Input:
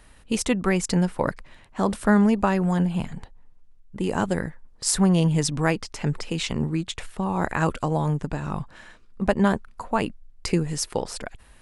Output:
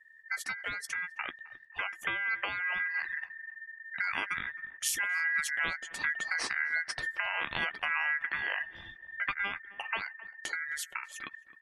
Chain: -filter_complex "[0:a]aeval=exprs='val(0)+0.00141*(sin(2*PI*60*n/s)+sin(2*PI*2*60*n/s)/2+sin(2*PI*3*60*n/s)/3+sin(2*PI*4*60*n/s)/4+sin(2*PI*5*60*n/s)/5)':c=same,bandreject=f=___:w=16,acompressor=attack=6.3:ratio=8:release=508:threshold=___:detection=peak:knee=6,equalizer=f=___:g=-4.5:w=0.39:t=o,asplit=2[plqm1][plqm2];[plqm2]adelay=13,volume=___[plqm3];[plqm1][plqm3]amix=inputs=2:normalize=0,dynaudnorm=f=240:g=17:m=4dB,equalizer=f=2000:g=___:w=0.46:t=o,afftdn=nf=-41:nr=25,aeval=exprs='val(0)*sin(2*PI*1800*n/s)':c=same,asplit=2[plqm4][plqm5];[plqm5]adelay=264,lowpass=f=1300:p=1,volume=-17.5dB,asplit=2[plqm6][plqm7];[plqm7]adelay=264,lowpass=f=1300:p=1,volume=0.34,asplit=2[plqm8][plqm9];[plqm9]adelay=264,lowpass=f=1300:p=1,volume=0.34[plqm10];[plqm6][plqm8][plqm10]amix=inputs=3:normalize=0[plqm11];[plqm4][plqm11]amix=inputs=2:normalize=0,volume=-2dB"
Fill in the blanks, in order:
5500, -26dB, 86, -11dB, -2.5